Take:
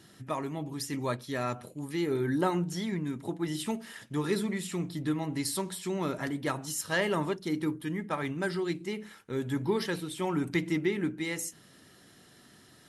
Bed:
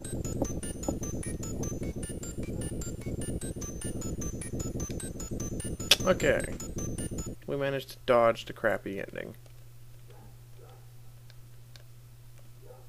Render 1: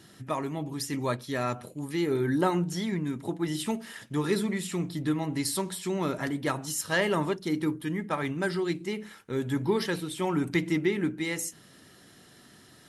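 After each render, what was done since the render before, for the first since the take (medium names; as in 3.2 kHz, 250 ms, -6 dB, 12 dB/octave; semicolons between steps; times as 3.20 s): trim +2.5 dB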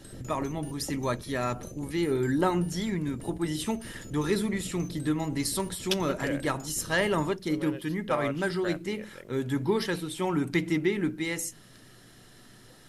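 add bed -9 dB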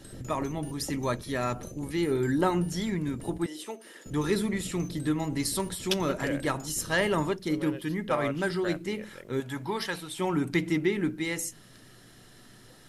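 3.46–4.06 s: ladder high-pass 300 Hz, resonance 30%; 9.40–10.19 s: resonant low shelf 530 Hz -6.5 dB, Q 1.5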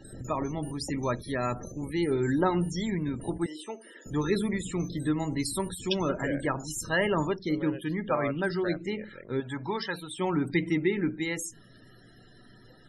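loudest bins only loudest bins 64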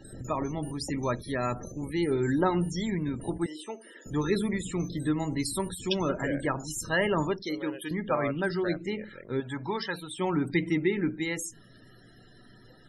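7.42–7.91 s: tone controls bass -14 dB, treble +10 dB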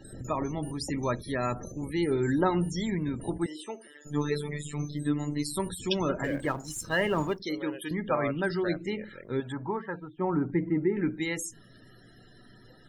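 3.87–5.57 s: robot voice 147 Hz; 6.24–7.40 s: companding laws mixed up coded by A; 9.52–10.97 s: low-pass 1.5 kHz 24 dB/octave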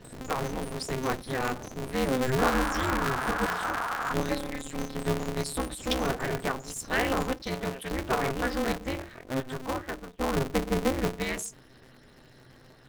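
2.38–4.14 s: painted sound noise 790–1600 Hz -31 dBFS; polarity switched at an audio rate 130 Hz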